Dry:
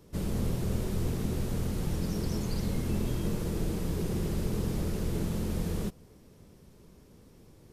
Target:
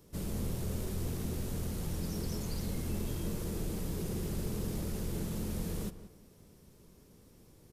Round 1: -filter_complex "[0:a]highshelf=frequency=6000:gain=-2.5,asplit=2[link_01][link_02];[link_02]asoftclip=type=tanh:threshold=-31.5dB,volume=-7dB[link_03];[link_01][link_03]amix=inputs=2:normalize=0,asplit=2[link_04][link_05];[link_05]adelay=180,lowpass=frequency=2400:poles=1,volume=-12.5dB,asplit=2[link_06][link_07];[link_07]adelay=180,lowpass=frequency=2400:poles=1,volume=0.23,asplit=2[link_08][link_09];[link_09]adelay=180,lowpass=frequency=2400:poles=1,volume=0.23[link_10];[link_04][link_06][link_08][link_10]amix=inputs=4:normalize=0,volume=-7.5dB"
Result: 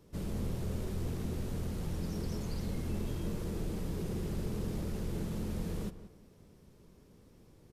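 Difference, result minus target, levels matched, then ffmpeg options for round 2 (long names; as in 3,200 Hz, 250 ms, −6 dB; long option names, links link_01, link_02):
8,000 Hz band −6.5 dB
-filter_complex "[0:a]highshelf=frequency=6000:gain=8,asplit=2[link_01][link_02];[link_02]asoftclip=type=tanh:threshold=-31.5dB,volume=-7dB[link_03];[link_01][link_03]amix=inputs=2:normalize=0,asplit=2[link_04][link_05];[link_05]adelay=180,lowpass=frequency=2400:poles=1,volume=-12.5dB,asplit=2[link_06][link_07];[link_07]adelay=180,lowpass=frequency=2400:poles=1,volume=0.23,asplit=2[link_08][link_09];[link_09]adelay=180,lowpass=frequency=2400:poles=1,volume=0.23[link_10];[link_04][link_06][link_08][link_10]amix=inputs=4:normalize=0,volume=-7.5dB"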